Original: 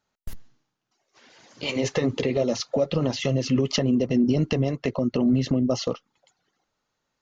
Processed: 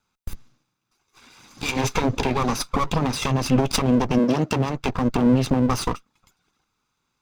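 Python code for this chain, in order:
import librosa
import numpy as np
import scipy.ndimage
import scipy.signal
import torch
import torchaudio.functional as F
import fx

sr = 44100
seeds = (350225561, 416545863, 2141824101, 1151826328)

y = fx.lower_of_two(x, sr, delay_ms=0.81)
y = fx.highpass(y, sr, hz=fx.line((4.18, 270.0), (4.66, 84.0)), slope=12, at=(4.18, 4.66), fade=0.02)
y = y * librosa.db_to_amplitude(5.0)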